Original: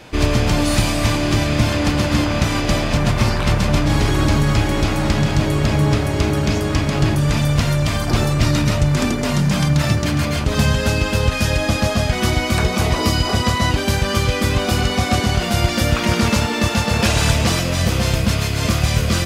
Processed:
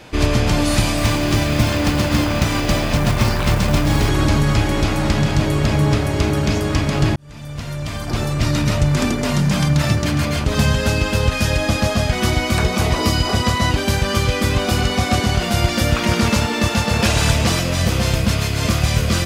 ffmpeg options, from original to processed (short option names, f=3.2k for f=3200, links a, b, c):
-filter_complex "[0:a]asettb=1/sr,asplit=3[a][b][c];[a]atrim=end=0.974[d];[b]atrim=start=0.97:end=4.09,asetpts=PTS-STARTPTS,afade=t=in:d=0.004:c=qsin,afade=t=out:st=3.116:d=0.004:c=qsin,acrusher=bits=5:mode=log:mix=0:aa=0.000001[e];[c]atrim=start=4.086[f];[d][e]acrossfade=d=0.004:c1=hsin:c2=qsin[g];[g][f]acrossfade=d=0.004:c1=qsin:c2=hsin,asplit=2[h][i];[h]atrim=end=7.16,asetpts=PTS-STARTPTS,afade=t=out:st=7.156:d=0.004:c=hsin[j];[i]atrim=start=7.16,asetpts=PTS-STARTPTS,afade=t=in:d=1.65[k];[j][k]concat=n=2:v=0:a=1"